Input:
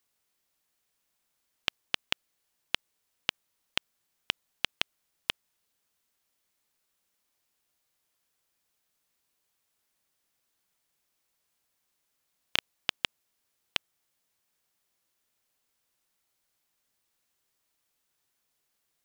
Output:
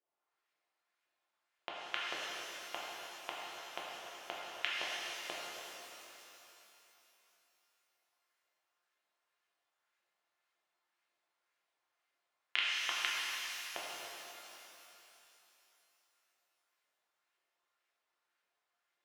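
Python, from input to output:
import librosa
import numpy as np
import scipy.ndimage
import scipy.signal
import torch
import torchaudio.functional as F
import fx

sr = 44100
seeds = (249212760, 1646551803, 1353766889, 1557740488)

y = fx.filter_lfo_bandpass(x, sr, shape='saw_up', hz=1.9, low_hz=540.0, high_hz=2300.0, q=2.0)
y = fx.comb_fb(y, sr, f0_hz=350.0, decay_s=0.17, harmonics='all', damping=0.0, mix_pct=70)
y = fx.rev_shimmer(y, sr, seeds[0], rt60_s=3.3, semitones=12, shimmer_db=-8, drr_db=-5.5)
y = y * librosa.db_to_amplitude(7.0)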